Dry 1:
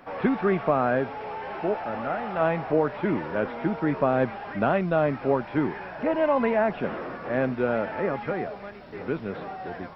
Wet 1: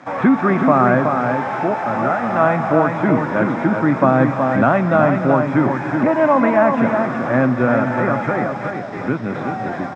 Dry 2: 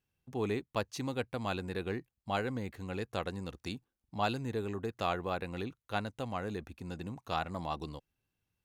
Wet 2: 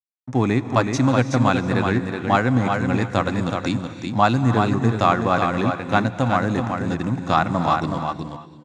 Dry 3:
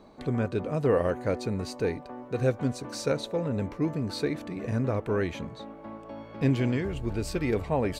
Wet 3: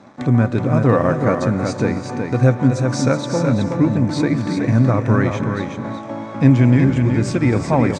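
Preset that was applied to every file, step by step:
dynamic bell 1.2 kHz, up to +4 dB, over -41 dBFS, Q 2.8; in parallel at +1 dB: compression, threshold -34 dBFS; on the sum: crossover distortion -49.5 dBFS; cabinet simulation 120–7400 Hz, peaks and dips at 120 Hz +9 dB, 260 Hz +4 dB, 430 Hz -9 dB, 2.9 kHz -9 dB, 4.4 kHz -9 dB; on a send: delay 373 ms -5.5 dB; on the sum: gated-style reverb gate 360 ms rising, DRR 11.5 dB; peak normalisation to -1.5 dBFS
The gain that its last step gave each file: +6.5 dB, +11.5 dB, +8.5 dB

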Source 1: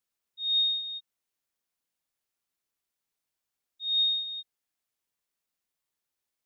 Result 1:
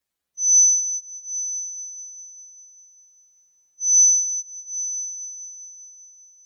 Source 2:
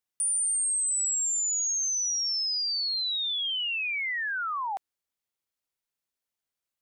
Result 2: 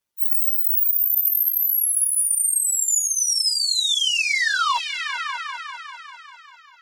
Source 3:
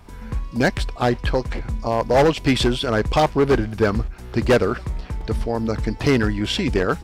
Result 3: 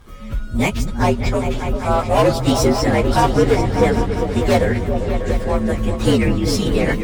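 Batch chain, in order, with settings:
frequency axis rescaled in octaves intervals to 118%; Chebyshev shaper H 5 -25 dB, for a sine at -4.5 dBFS; delay with an opening low-pass 198 ms, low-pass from 200 Hz, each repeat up 2 oct, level -3 dB; normalise loudness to -18 LUFS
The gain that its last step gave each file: +9.0 dB, +12.0 dB, +2.5 dB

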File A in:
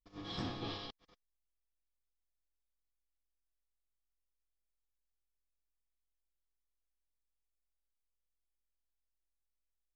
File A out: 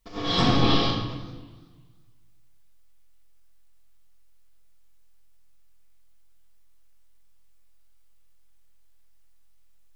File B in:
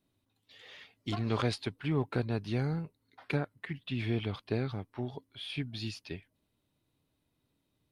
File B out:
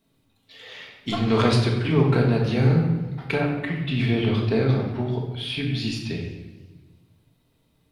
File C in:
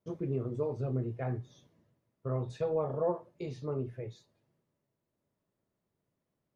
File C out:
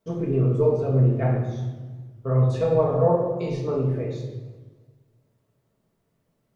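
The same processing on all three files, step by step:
hum notches 50/100/150/200/250/300 Hz; simulated room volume 550 m³, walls mixed, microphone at 1.6 m; modulated delay 94 ms, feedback 69%, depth 201 cents, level -20 dB; normalise loudness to -23 LUFS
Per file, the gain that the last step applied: +16.5 dB, +7.5 dB, +7.0 dB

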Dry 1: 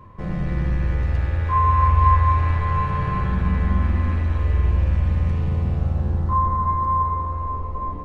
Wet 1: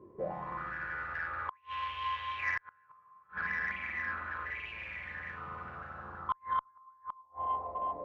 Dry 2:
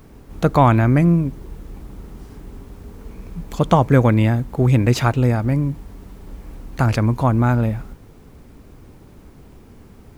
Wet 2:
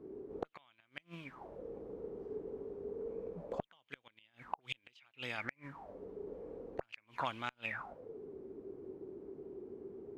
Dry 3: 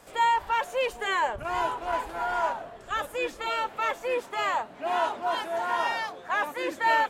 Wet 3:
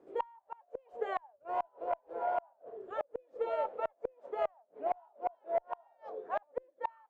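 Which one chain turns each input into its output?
auto-wah 350–3100 Hz, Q 8.1, up, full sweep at -13 dBFS; inverted gate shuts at -32 dBFS, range -35 dB; Chebyshev shaper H 3 -21 dB, 4 -42 dB, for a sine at -29.5 dBFS; trim +12 dB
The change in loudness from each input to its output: -16.0 LU, -28.0 LU, -10.0 LU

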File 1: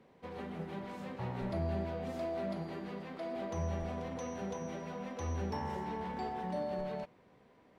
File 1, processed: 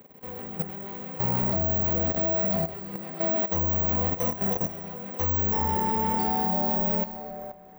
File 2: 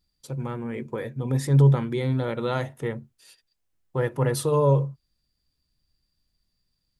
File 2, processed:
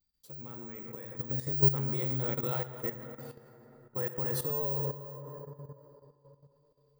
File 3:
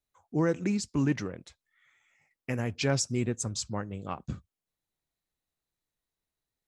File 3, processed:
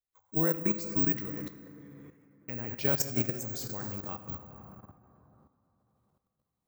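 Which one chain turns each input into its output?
careless resampling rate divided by 2×, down none, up zero stuff; plate-style reverb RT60 3.4 s, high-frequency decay 0.45×, DRR 4 dB; level held to a coarse grid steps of 12 dB; peak normalisation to -12 dBFS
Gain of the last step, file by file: +10.5 dB, -8.0 dB, -1.5 dB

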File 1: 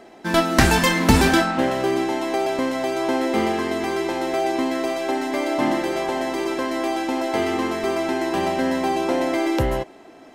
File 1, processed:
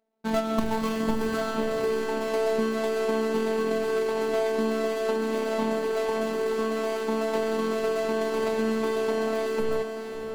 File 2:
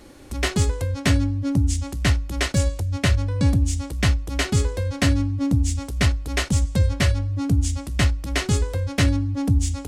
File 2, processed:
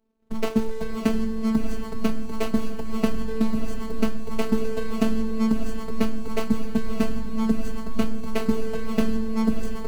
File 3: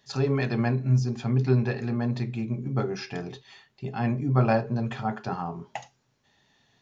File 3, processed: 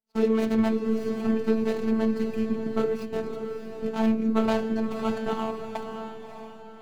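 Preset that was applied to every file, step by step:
median filter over 25 samples; gate -41 dBFS, range -30 dB; compression 6:1, threshold -21 dBFS; robot voice 222 Hz; on a send: echo that smears into a reverb 604 ms, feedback 40%, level -7 dB; on the sum: normalise loudness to -27 LUFS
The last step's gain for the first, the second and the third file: +1.0 dB, +7.0 dB, +6.5 dB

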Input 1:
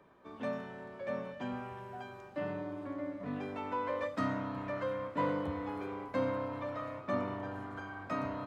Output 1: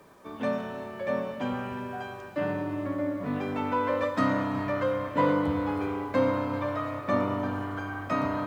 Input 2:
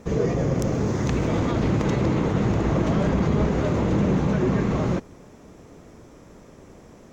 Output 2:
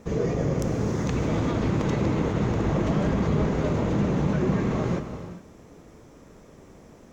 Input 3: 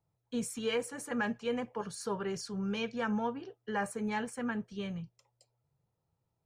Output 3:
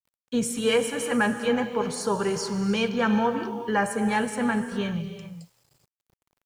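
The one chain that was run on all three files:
gated-style reverb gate 440 ms flat, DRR 7.5 dB; word length cut 12-bit, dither none; peak normalisation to -12 dBFS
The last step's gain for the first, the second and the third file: +8.0 dB, -3.0 dB, +9.5 dB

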